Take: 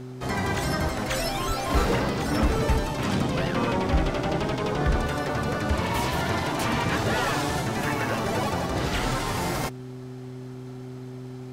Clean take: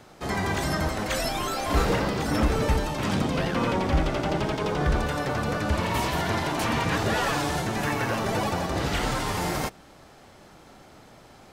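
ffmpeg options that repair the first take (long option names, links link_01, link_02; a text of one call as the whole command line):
ffmpeg -i in.wav -filter_complex "[0:a]bandreject=frequency=127.1:width_type=h:width=4,bandreject=frequency=254.2:width_type=h:width=4,bandreject=frequency=381.3:width_type=h:width=4,asplit=3[link_01][link_02][link_03];[link_01]afade=type=out:start_time=1.47:duration=0.02[link_04];[link_02]highpass=frequency=140:width=0.5412,highpass=frequency=140:width=1.3066,afade=type=in:start_time=1.47:duration=0.02,afade=type=out:start_time=1.59:duration=0.02[link_05];[link_03]afade=type=in:start_time=1.59:duration=0.02[link_06];[link_04][link_05][link_06]amix=inputs=3:normalize=0" out.wav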